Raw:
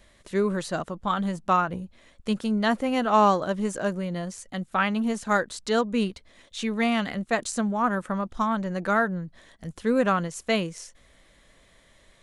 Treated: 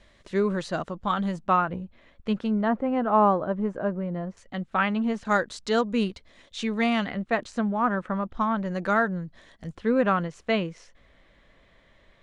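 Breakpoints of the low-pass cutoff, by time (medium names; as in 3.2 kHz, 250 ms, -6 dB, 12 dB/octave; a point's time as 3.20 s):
5.6 kHz
from 1.44 s 3 kHz
from 2.61 s 1.3 kHz
from 4.37 s 3.3 kHz
from 5.25 s 6.6 kHz
from 7.05 s 3 kHz
from 8.65 s 6.5 kHz
from 9.75 s 3.1 kHz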